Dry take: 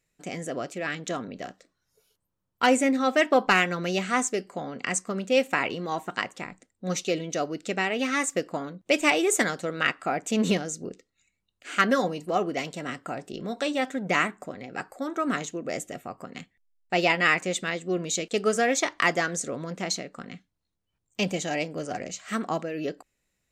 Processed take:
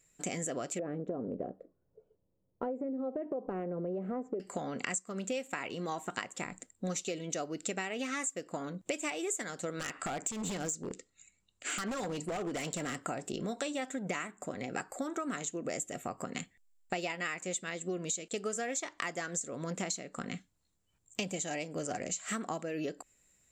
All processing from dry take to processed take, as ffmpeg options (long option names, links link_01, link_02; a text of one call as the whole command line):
ffmpeg -i in.wav -filter_complex "[0:a]asettb=1/sr,asplit=3[link_01][link_02][link_03];[link_01]atrim=end=0.794[link_04];[link_02]atrim=start=0.79:end=4.4,asetpts=PTS-STARTPTS,afade=type=in:duration=0.004:curve=qsin,afade=type=out:start_time=3.606:duration=0.004:curve=qsin,lowpass=frequency=500:width_type=q:width=2,acompressor=threshold=-29dB:ratio=2.5:attack=3.2:release=140:knee=1:detection=peak[link_05];[link_03]atrim=start=4.396[link_06];[link_04][link_05]acrossfade=duration=0.004:curve1=hsin:curve2=qsin[link_07];[link_07][link_06]acrossfade=duration=0.004:curve1=qsin:curve2=hsin,asettb=1/sr,asplit=3[link_08][link_09][link_10];[link_08]atrim=end=9.794[link_11];[link_09]atrim=start=9.79:end=13.01,asetpts=PTS-STARTPTS,afade=type=in:duration=0.004:curve=qsin,afade=type=out:start_time=3.216:duration=0.004:curve=qsin,lowpass=frequency=10000:width=0.5412,lowpass=frequency=10000:width=1.3066,acompressor=threshold=-30dB:ratio=5:attack=3.2:release=140:knee=1:detection=peak,aeval=exprs='0.0335*(abs(mod(val(0)/0.0335+3,4)-2)-1)':channel_layout=same[link_12];[link_10]atrim=start=13.006[link_13];[link_11][link_12]acrossfade=duration=0.004:curve1=hsin:curve2=qsin[link_14];[link_14][link_13]acrossfade=duration=0.004:curve1=qsin:curve2=hsin,equalizer=frequency=7400:width_type=o:width=0.24:gain=14,acompressor=threshold=-36dB:ratio=12,volume=3dB" out.wav